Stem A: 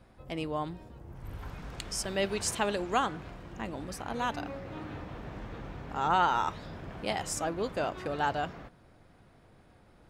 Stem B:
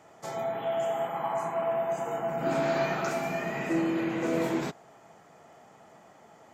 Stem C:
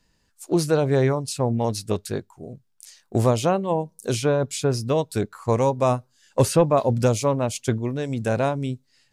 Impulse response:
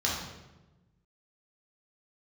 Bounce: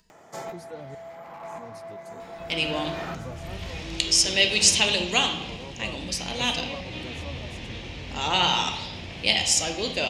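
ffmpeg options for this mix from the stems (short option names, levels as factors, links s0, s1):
-filter_complex "[0:a]lowpass=8100,highshelf=f=2000:t=q:w=3:g=11.5,adelay=2200,volume=1.12,asplit=2[s0][s1];[s1]volume=0.251[s2];[1:a]alimiter=limit=0.0631:level=0:latency=1:release=207,volume=33.5,asoftclip=hard,volume=0.0299,adelay=100,volume=1.19,asplit=2[s3][s4];[s4]volume=0.0891[s5];[2:a]asplit=2[s6][s7];[s7]adelay=2.7,afreqshift=2[s8];[s6][s8]amix=inputs=2:normalize=1,volume=0.112,asplit=3[s9][s10][s11];[s9]atrim=end=0.95,asetpts=PTS-STARTPTS,afade=t=out:st=0.946:d=0.004:c=hsin[s12];[s10]atrim=start=0.95:end=1.58,asetpts=PTS-STARTPTS,volume=0[s13];[s11]atrim=start=1.58,asetpts=PTS-STARTPTS,afade=t=in:d=0.004:c=hsin[s14];[s12][s13][s14]concat=n=3:v=0:a=1,asplit=2[s15][s16];[s16]apad=whole_len=292684[s17];[s3][s17]sidechaincompress=threshold=0.00112:ratio=4:attack=8.9:release=614[s18];[3:a]atrim=start_sample=2205[s19];[s2][s5]amix=inputs=2:normalize=0[s20];[s20][s19]afir=irnorm=-1:irlink=0[s21];[s0][s18][s15][s21]amix=inputs=4:normalize=0,acompressor=mode=upward:threshold=0.00355:ratio=2.5"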